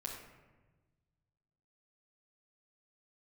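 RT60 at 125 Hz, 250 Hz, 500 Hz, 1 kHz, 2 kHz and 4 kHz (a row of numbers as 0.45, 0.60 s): 2.3, 1.7, 1.4, 1.1, 1.1, 0.70 s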